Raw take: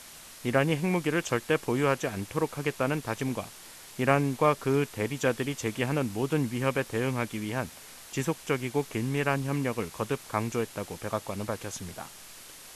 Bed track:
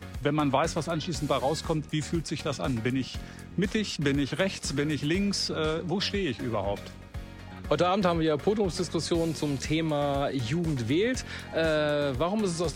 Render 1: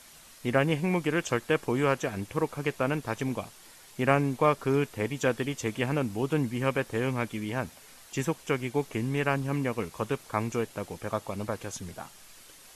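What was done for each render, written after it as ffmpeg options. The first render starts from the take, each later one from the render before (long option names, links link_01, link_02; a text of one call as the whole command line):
ffmpeg -i in.wav -af "afftdn=noise_reduction=6:noise_floor=-48" out.wav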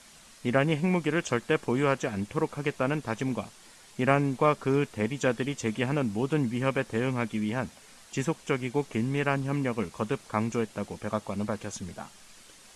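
ffmpeg -i in.wav -af "lowpass=frequency=10000:width=0.5412,lowpass=frequency=10000:width=1.3066,equalizer=frequency=210:width=5.3:gain=7" out.wav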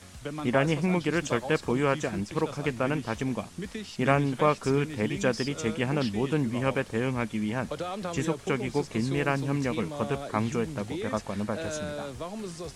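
ffmpeg -i in.wav -i bed.wav -filter_complex "[1:a]volume=-9.5dB[link_01];[0:a][link_01]amix=inputs=2:normalize=0" out.wav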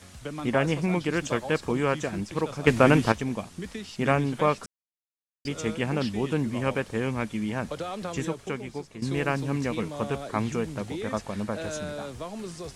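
ffmpeg -i in.wav -filter_complex "[0:a]asplit=6[link_01][link_02][link_03][link_04][link_05][link_06];[link_01]atrim=end=2.672[link_07];[link_02]atrim=start=2.668:end=3.122,asetpts=PTS-STARTPTS,volume=9.5dB[link_08];[link_03]atrim=start=3.118:end=4.66,asetpts=PTS-STARTPTS,afade=type=out:start_time=1.538:duration=0.004:curve=hsin[link_09];[link_04]atrim=start=4.66:end=5.45,asetpts=PTS-STARTPTS,volume=0[link_10];[link_05]atrim=start=5.45:end=9.02,asetpts=PTS-STARTPTS,afade=type=in:duration=0.004:curve=hsin,afade=type=out:start_time=2.58:duration=0.99:silence=0.211349[link_11];[link_06]atrim=start=9.02,asetpts=PTS-STARTPTS,afade=type=in:duration=0.004:curve=hsin:silence=0.211349[link_12];[link_07][link_08]acrossfade=duration=0.004:curve1=hsin:curve2=hsin[link_13];[link_09][link_10][link_11][link_12]concat=n=4:v=0:a=1[link_14];[link_13][link_14]acrossfade=duration=0.004:curve1=hsin:curve2=hsin" out.wav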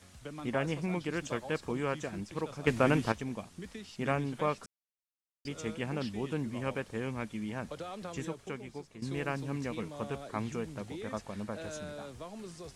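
ffmpeg -i in.wav -af "volume=-8dB" out.wav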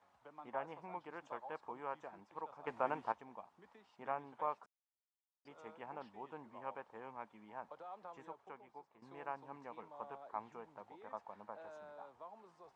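ffmpeg -i in.wav -af "bandpass=frequency=890:width_type=q:width=3.6:csg=0" out.wav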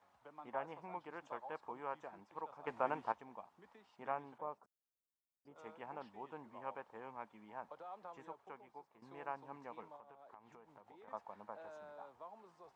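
ffmpeg -i in.wav -filter_complex "[0:a]asettb=1/sr,asplit=3[link_01][link_02][link_03];[link_01]atrim=end=4.384[link_04];[link_02]atrim=start=4.38:end=5.56,asetpts=PTS-STARTPTS,afade=type=in:duration=0.004:curve=qsin,afade=type=out:start_time=1.176:duration=0.004:curve=qsin,equalizer=frequency=2800:width=0.38:gain=-14.5[link_05];[link_03]atrim=start=5.556[link_06];[link_04][link_05]acrossfade=duration=0.004:curve1=hsin:curve2=qsin[link_07];[link_07][link_06]acrossfade=duration=0.004:curve1=qsin:curve2=hsin,asettb=1/sr,asplit=3[link_08][link_09][link_10];[link_08]atrim=end=9.964[link_11];[link_09]atrim=start=9.96:end=11.08,asetpts=PTS-STARTPTS,afade=type=in:duration=0.004:curve=qsin,afade=type=out:start_time=1.116:duration=0.004:curve=qsin,acompressor=threshold=-56dB:ratio=5:attack=3.2:release=140:knee=1:detection=peak[link_12];[link_10]atrim=start=11.076[link_13];[link_11][link_12]acrossfade=duration=0.004:curve1=hsin:curve2=qsin[link_14];[link_14][link_13]acrossfade=duration=0.004:curve1=qsin:curve2=hsin" out.wav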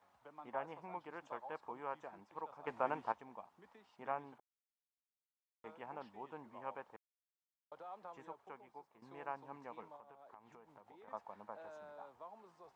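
ffmpeg -i in.wav -filter_complex "[0:a]asettb=1/sr,asplit=3[link_01][link_02][link_03];[link_01]atrim=end=6.964[link_04];[link_02]atrim=start=6.96:end=7.72,asetpts=PTS-STARTPTS,afade=type=in:duration=0.004:curve=qsin,afade=type=out:start_time=0.756:duration=0.004:curve=qsin,acrusher=bits=2:mix=0:aa=0.5[link_05];[link_03]atrim=start=7.716[link_06];[link_04][link_05]acrossfade=duration=0.004:curve1=hsin:curve2=qsin[link_07];[link_07][link_06]acrossfade=duration=0.004:curve1=qsin:curve2=hsin,asplit=3[link_08][link_09][link_10];[link_08]atrim=end=4.4,asetpts=PTS-STARTPTS,afade=type=out:start_time=4.396:duration=0.004:curve=hsin[link_11];[link_09]atrim=start=4.4:end=5.64,asetpts=PTS-STARTPTS,volume=0[link_12];[link_10]atrim=start=5.64,asetpts=PTS-STARTPTS,afade=type=in:duration=0.004:curve=hsin[link_13];[link_11][link_12][link_13]concat=n=3:v=0:a=1" out.wav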